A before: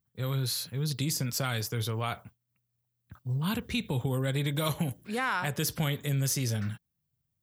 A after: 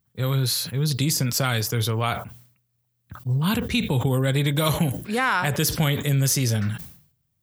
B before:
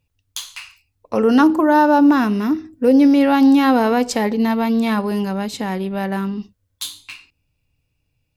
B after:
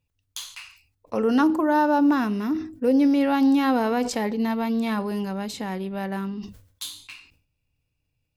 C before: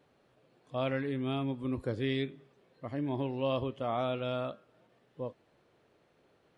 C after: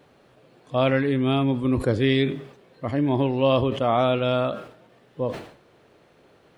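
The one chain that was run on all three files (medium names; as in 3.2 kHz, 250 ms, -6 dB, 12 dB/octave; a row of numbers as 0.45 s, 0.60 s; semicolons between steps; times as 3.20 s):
decay stretcher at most 100 dB/s; normalise loudness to -23 LUFS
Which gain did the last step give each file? +8.0 dB, -7.0 dB, +11.5 dB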